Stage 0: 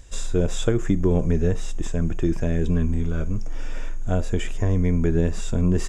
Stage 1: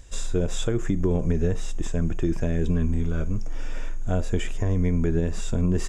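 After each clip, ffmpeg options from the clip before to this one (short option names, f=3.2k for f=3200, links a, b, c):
-af "alimiter=limit=-12dB:level=0:latency=1:release=92,volume=-1dB"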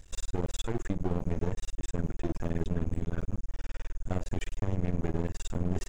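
-af "aeval=exprs='max(val(0),0)':c=same,volume=-4.5dB"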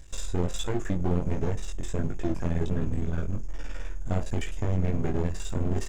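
-af "flanger=delay=19.5:depth=3.4:speed=1.4,volume=7dB"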